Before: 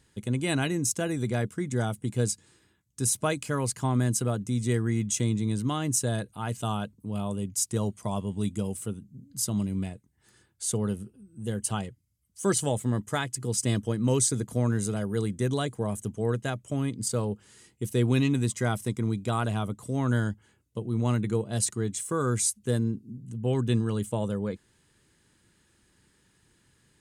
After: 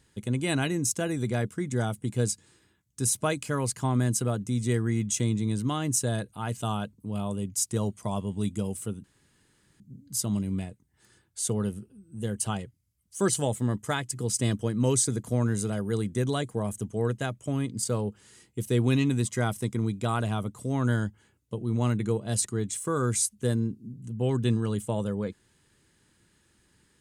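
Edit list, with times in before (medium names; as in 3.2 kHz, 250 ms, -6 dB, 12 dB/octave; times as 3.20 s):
9.04 s: insert room tone 0.76 s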